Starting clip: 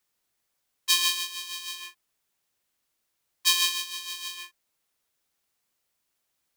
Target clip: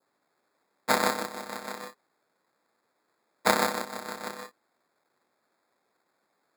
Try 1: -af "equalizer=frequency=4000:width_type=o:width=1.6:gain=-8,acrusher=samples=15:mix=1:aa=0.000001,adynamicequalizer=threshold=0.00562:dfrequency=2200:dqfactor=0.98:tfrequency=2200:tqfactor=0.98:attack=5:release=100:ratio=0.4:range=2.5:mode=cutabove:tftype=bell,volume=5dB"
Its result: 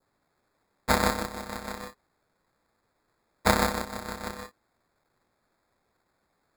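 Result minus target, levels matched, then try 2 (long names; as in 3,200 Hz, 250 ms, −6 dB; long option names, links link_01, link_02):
250 Hz band +3.5 dB
-af "equalizer=frequency=4000:width_type=o:width=1.6:gain=-8,acrusher=samples=15:mix=1:aa=0.000001,adynamicequalizer=threshold=0.00562:dfrequency=2200:dqfactor=0.98:tfrequency=2200:tqfactor=0.98:attack=5:release=100:ratio=0.4:range=2.5:mode=cutabove:tftype=bell,highpass=250,volume=5dB"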